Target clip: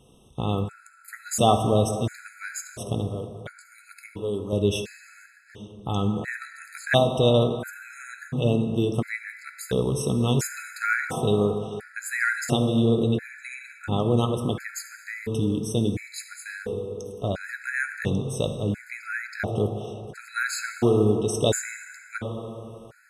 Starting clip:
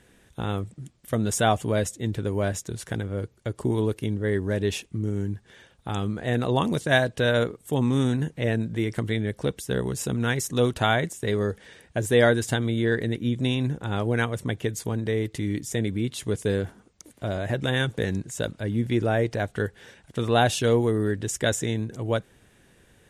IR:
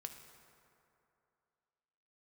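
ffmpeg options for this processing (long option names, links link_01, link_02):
-filter_complex "[0:a]asettb=1/sr,asplit=3[link_01][link_02][link_03];[link_01]atrim=end=3.094[link_04];[link_02]atrim=start=3.09:end=4.53,asetpts=PTS-STARTPTS,afade=type=in:duration=0.004:curve=qsin,afade=type=out:start_time=1.436:duration=0.004:curve=qsin,lowshelf=frequency=470:gain=-9.5[link_05];[link_03]atrim=start=4.526[link_06];[link_04][link_05]acrossfade=duration=0.004:curve1=hsin:curve2=qsin[link_07];[link_07][link_06]acrossfade=duration=0.004:curve1=qsin:curve2=hsin[link_08];[1:a]atrim=start_sample=2205[link_09];[link_08][link_09]afir=irnorm=-1:irlink=0,afftfilt=real='re*gt(sin(2*PI*0.72*pts/sr)*(1-2*mod(floor(b*sr/1024/1300),2)),0)':imag='im*gt(sin(2*PI*0.72*pts/sr)*(1-2*mod(floor(b*sr/1024/1300),2)),0)':win_size=1024:overlap=0.75,volume=7.5dB"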